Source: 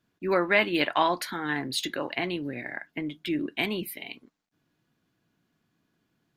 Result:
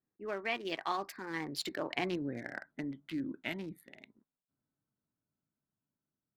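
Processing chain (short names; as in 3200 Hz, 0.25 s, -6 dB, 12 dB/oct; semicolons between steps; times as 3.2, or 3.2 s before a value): Wiener smoothing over 15 samples; Doppler pass-by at 2.22, 38 m/s, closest 25 m; gain -3.5 dB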